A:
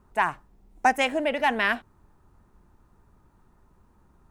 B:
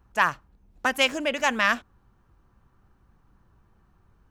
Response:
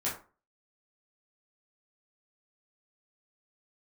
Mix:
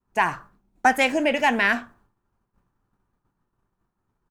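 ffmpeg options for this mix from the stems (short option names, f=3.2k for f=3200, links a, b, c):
-filter_complex "[0:a]agate=range=-6dB:threshold=-48dB:ratio=16:detection=peak,volume=2.5dB[a];[1:a]highpass=72,alimiter=limit=-16.5dB:level=0:latency=1,adelay=0.3,volume=-4.5dB,asplit=2[b][c];[c]volume=-6dB[d];[2:a]atrim=start_sample=2205[e];[d][e]afir=irnorm=-1:irlink=0[f];[a][b][f]amix=inputs=3:normalize=0,agate=range=-33dB:threshold=-50dB:ratio=3:detection=peak,equalizer=f=69:w=1.9:g=-8.5"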